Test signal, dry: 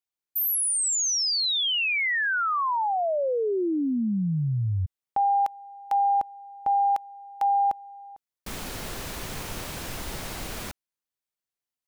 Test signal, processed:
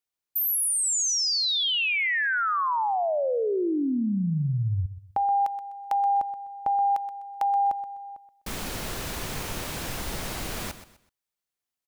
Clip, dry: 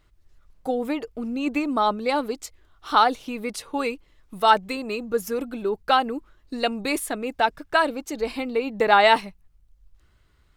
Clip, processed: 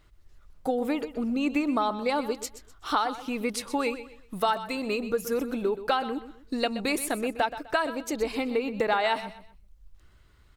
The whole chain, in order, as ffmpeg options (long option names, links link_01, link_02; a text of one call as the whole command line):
ffmpeg -i in.wav -filter_complex "[0:a]acompressor=threshold=-24dB:ratio=6:attack=12:release=587:knee=6:detection=peak,asplit=2[link_01][link_02];[link_02]aecho=0:1:126|252|378:0.224|0.0672|0.0201[link_03];[link_01][link_03]amix=inputs=2:normalize=0,volume=2dB" out.wav